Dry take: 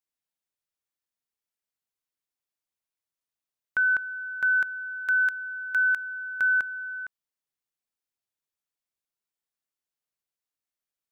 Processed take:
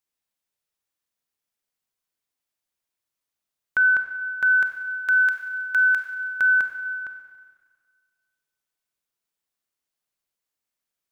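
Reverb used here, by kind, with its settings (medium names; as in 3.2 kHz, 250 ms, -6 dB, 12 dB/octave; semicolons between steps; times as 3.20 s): Schroeder reverb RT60 1.7 s, combs from 31 ms, DRR 6 dB; trim +4 dB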